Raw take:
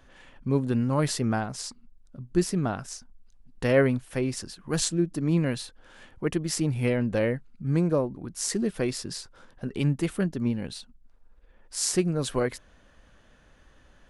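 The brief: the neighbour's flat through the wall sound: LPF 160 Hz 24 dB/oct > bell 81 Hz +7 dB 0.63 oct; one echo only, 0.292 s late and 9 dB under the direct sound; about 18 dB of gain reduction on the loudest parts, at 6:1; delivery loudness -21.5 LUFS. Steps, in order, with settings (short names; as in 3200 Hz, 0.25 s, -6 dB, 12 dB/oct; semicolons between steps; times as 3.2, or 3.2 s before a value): compressor 6:1, threshold -37 dBFS; LPF 160 Hz 24 dB/oct; bell 81 Hz +7 dB 0.63 oct; echo 0.292 s -9 dB; gain +25.5 dB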